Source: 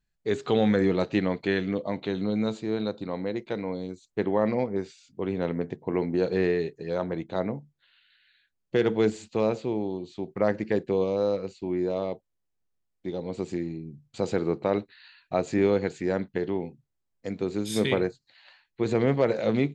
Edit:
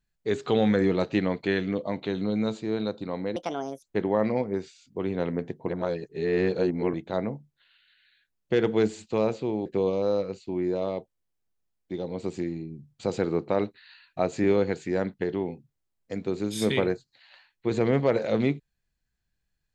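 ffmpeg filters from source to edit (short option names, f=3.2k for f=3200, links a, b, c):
-filter_complex "[0:a]asplit=6[a][b][c][d][e][f];[a]atrim=end=3.364[g];[b]atrim=start=3.36:end=4.05,asetpts=PTS-STARTPTS,asetrate=65268,aresample=44100,atrim=end_sample=20560,asetpts=PTS-STARTPTS[h];[c]atrim=start=4.046:end=5.912[i];[d]atrim=start=5.908:end=7.162,asetpts=PTS-STARTPTS,areverse[j];[e]atrim=start=7.158:end=9.882[k];[f]atrim=start=10.798[l];[g][h]acrossfade=d=0.004:c1=hsin:c2=hsin[m];[m][i]acrossfade=d=0.004:c1=hsin:c2=hsin[n];[n][j]acrossfade=d=0.004:c1=hsin:c2=hsin[o];[o][k]acrossfade=d=0.004:c1=hsin:c2=hsin[p];[p][l]acrossfade=d=0.004:c1=hsin:c2=hsin"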